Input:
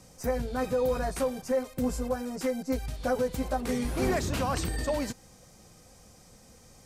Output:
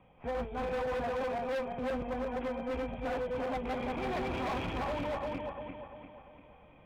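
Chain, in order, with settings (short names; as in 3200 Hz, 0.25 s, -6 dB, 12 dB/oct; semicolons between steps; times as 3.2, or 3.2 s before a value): regenerating reverse delay 0.173 s, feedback 67%, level 0 dB; rippled Chebyshev low-pass 3400 Hz, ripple 9 dB; hard clip -31.5 dBFS, distortion -8 dB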